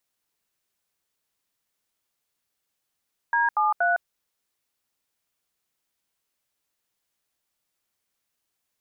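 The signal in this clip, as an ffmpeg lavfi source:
ffmpeg -f lavfi -i "aevalsrc='0.0841*clip(min(mod(t,0.237),0.159-mod(t,0.237))/0.002,0,1)*(eq(floor(t/0.237),0)*(sin(2*PI*941*mod(t,0.237))+sin(2*PI*1633*mod(t,0.237)))+eq(floor(t/0.237),1)*(sin(2*PI*852*mod(t,0.237))+sin(2*PI*1209*mod(t,0.237)))+eq(floor(t/0.237),2)*(sin(2*PI*697*mod(t,0.237))+sin(2*PI*1477*mod(t,0.237))))':duration=0.711:sample_rate=44100" out.wav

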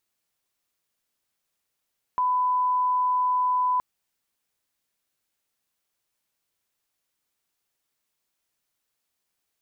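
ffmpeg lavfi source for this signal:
ffmpeg -f lavfi -i "sine=frequency=1000:duration=1.62:sample_rate=44100,volume=-1.94dB" out.wav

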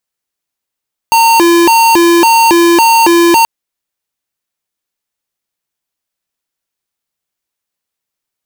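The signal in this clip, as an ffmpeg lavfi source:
ffmpeg -f lavfi -i "aevalsrc='0.473*(2*lt(mod((628*t+287/1.8*(0.5-abs(mod(1.8*t,1)-0.5))),1),0.5)-1)':duration=2.33:sample_rate=44100" out.wav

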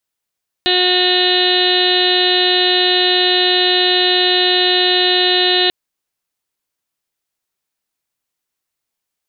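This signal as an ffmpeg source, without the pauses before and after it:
ffmpeg -f lavfi -i "aevalsrc='0.133*sin(2*PI*363*t)+0.0841*sin(2*PI*726*t)+0.015*sin(2*PI*1089*t)+0.0299*sin(2*PI*1452*t)+0.0841*sin(2*PI*1815*t)+0.0237*sin(2*PI*2178*t)+0.0447*sin(2*PI*2541*t)+0.112*sin(2*PI*2904*t)+0.0596*sin(2*PI*3267*t)+0.119*sin(2*PI*3630*t)+0.141*sin(2*PI*3993*t)+0.0299*sin(2*PI*4356*t)':duration=5.04:sample_rate=44100" out.wav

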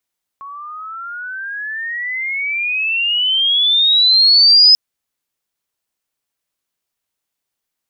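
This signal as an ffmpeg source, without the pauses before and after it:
ffmpeg -f lavfi -i "aevalsrc='pow(10,(-29+24.5*t/4.34)/20)*sin(2*PI*1100*4.34/log(5100/1100)*(exp(log(5100/1100)*t/4.34)-1))':duration=4.34:sample_rate=44100" out.wav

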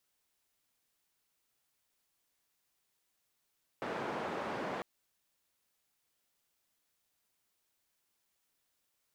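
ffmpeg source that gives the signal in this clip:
ffmpeg -f lavfi -i "anoisesrc=color=white:duration=1:sample_rate=44100:seed=1,highpass=frequency=180,lowpass=frequency=1000,volume=-19.9dB" out.wav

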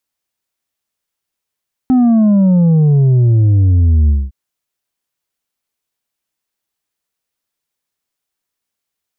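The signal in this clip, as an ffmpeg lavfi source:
ffmpeg -f lavfi -i "aevalsrc='0.422*clip((2.41-t)/0.22,0,1)*tanh(1.68*sin(2*PI*260*2.41/log(65/260)*(exp(log(65/260)*t/2.41)-1)))/tanh(1.68)':duration=2.41:sample_rate=44100" out.wav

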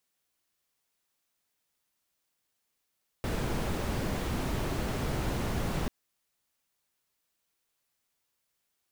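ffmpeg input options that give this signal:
ffmpeg -f lavfi -i "anoisesrc=color=brown:amplitude=0.132:duration=2.64:sample_rate=44100:seed=1" out.wav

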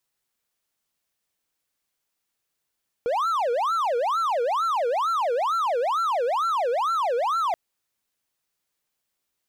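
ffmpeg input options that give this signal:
ffmpeg -f lavfi -i "aevalsrc='0.112*(1-4*abs(mod((913.5*t-446.5/(2*PI*2.2)*sin(2*PI*2.2*t))+0.25,1)-0.5))':duration=4.48:sample_rate=44100" out.wav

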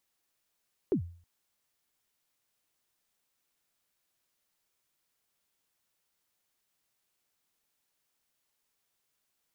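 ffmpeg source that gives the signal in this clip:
ffmpeg -f lavfi -i "aevalsrc='0.0891*pow(10,-3*t/0.46)*sin(2*PI*(440*0.096/log(86/440)*(exp(log(86/440)*min(t,0.096)/0.096)-1)+86*max(t-0.096,0)))':duration=0.32:sample_rate=44100" out.wav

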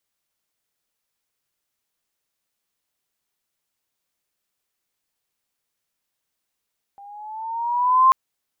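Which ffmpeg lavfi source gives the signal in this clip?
ffmpeg -f lavfi -i "aevalsrc='pow(10,(-9+31*(t/1.14-1))/20)*sin(2*PI*795*1.14/(5*log(2)/12)*(exp(5*log(2)/12*t/1.14)-1))':duration=1.14:sample_rate=44100" out.wav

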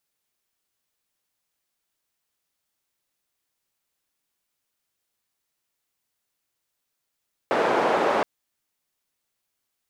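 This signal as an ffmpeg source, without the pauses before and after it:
ffmpeg -f lavfi -i "anoisesrc=color=white:duration=0.72:sample_rate=44100:seed=1,highpass=frequency=400,lowpass=frequency=750,volume=-0dB" out.wav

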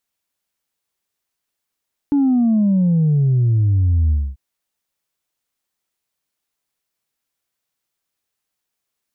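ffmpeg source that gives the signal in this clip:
ffmpeg -f lavfi -i "aevalsrc='0.237*clip((2.24-t)/0.25,0,1)*tanh(1.06*sin(2*PI*290*2.24/log(65/290)*(exp(log(65/290)*t/2.24)-1)))/tanh(1.06)':duration=2.24:sample_rate=44100" out.wav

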